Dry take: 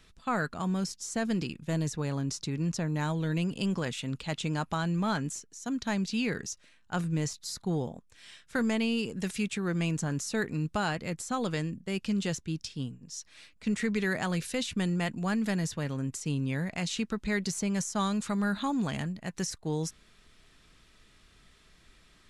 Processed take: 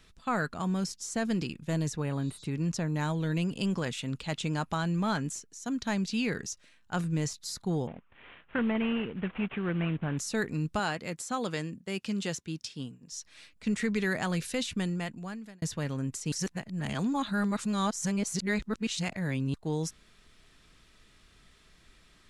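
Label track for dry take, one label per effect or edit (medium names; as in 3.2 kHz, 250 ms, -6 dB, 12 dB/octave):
2.050000	2.430000	spectral replace 3.3–8.1 kHz
7.870000	10.180000	CVSD coder 16 kbps
10.790000	13.120000	high-pass 210 Hz 6 dB/octave
14.660000	15.620000	fade out
16.320000	19.540000	reverse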